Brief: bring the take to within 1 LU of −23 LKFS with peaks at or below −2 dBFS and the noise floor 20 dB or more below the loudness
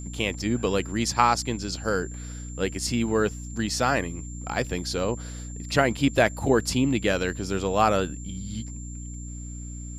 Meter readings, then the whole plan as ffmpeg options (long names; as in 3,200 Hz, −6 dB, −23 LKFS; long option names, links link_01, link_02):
mains hum 60 Hz; hum harmonics up to 300 Hz; level of the hum −34 dBFS; interfering tone 7,300 Hz; level of the tone −43 dBFS; integrated loudness −25.5 LKFS; sample peak −5.0 dBFS; target loudness −23.0 LKFS
→ -af "bandreject=frequency=60:width_type=h:width=6,bandreject=frequency=120:width_type=h:width=6,bandreject=frequency=180:width_type=h:width=6,bandreject=frequency=240:width_type=h:width=6,bandreject=frequency=300:width_type=h:width=6"
-af "bandreject=frequency=7300:width=30"
-af "volume=2.5dB"